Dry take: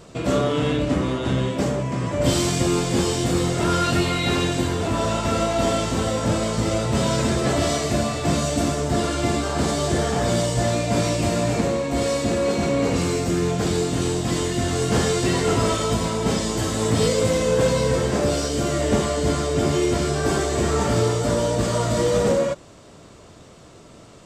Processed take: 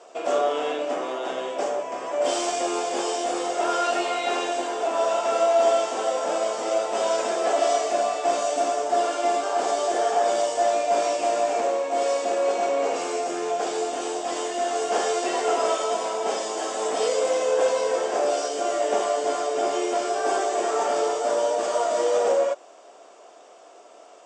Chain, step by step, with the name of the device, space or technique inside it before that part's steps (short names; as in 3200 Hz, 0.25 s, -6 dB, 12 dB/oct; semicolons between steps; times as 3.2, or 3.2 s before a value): phone speaker on a table (speaker cabinet 400–7900 Hz, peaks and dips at 720 Hz +10 dB, 2000 Hz -4 dB, 4100 Hz -9 dB); gain -2 dB